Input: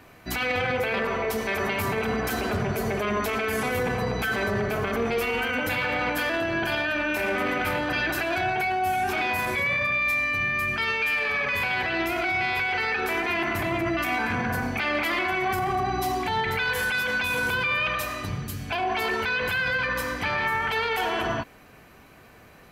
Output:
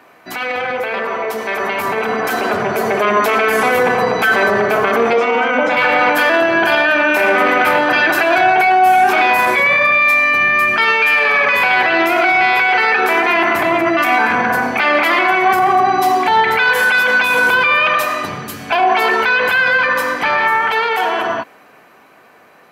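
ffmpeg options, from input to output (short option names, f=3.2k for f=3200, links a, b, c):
-filter_complex "[0:a]asettb=1/sr,asplit=3[a][b][c];[a]atrim=end=5.134[d];[b]atrim=start=5.13:end=5.77,asetpts=PTS-STARTPTS,afade=t=in:d=0.004:c=qsin,afade=t=out:st=0.636:d=0.004:c=qsin,highpass=f=140:w=0.5412,highpass=f=140:w=1.3066,equalizer=f=260:t=q:w=4:g=3,equalizer=f=400:t=q:w=4:g=-4,equalizer=f=580:t=q:w=4:g=5,equalizer=f=1.7k:t=q:w=4:g=-6,equalizer=f=2.8k:t=q:w=4:g=-7,equalizer=f=4.4k:t=q:w=4:g=-9,lowpass=f=6k:w=0.5412,lowpass=f=6k:w=1.3066[e];[c]atrim=start=5.766[f];[d][e]acrossfade=d=0.004:c1=hsin:c2=qsin[g];[g][f]acrossfade=d=0.004:c1=qsin:c2=hsin,highpass=210,equalizer=f=960:w=0.48:g=8,dynaudnorm=f=270:g=17:m=11dB"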